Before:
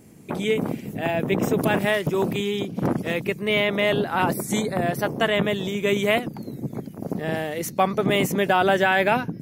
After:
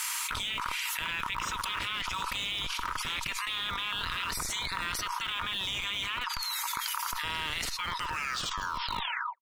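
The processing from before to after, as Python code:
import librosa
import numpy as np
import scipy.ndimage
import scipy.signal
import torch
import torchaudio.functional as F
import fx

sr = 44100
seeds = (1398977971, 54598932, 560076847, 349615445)

p1 = fx.tape_stop_end(x, sr, length_s=1.69)
p2 = fx.spec_gate(p1, sr, threshold_db=-15, keep='weak')
p3 = scipy.signal.sosfilt(scipy.signal.cheby1(6, 6, 920.0, 'highpass', fs=sr, output='sos'), p2)
p4 = fx.env_lowpass_down(p3, sr, base_hz=1900.0, full_db=-27.5)
p5 = fx.schmitt(p4, sr, flips_db=-39.5)
p6 = p4 + (p5 * librosa.db_to_amplitude(-9.0))
p7 = fx.env_flatten(p6, sr, amount_pct=100)
y = p7 * librosa.db_to_amplitude(-2.5)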